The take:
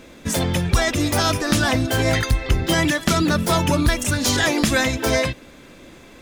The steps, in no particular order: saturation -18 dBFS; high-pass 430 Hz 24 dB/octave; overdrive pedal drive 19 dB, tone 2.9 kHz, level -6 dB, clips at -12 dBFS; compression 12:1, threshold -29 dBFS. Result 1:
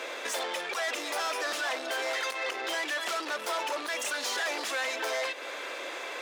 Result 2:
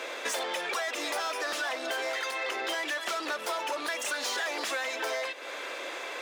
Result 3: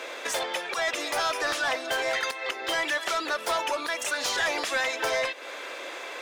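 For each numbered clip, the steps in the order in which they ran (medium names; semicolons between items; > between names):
overdrive pedal > saturation > compression > high-pass; overdrive pedal > high-pass > compression > saturation; compression > high-pass > overdrive pedal > saturation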